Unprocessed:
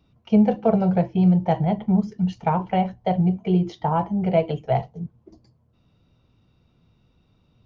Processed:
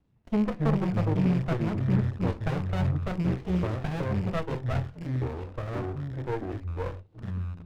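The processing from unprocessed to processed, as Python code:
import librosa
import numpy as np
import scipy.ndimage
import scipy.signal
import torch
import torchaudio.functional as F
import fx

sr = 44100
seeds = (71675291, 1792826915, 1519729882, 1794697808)

y = fx.rattle_buzz(x, sr, strikes_db=-31.0, level_db=-25.0)
y = scipy.signal.sosfilt(scipy.signal.butter(2, 3000.0, 'lowpass', fs=sr, output='sos'), y)
y = fx.high_shelf(y, sr, hz=2200.0, db=7.5)
y = fx.echo_pitch(y, sr, ms=141, semitones=-6, count=2, db_per_echo=-3.0)
y = fx.running_max(y, sr, window=33)
y = y * 10.0 ** (-8.0 / 20.0)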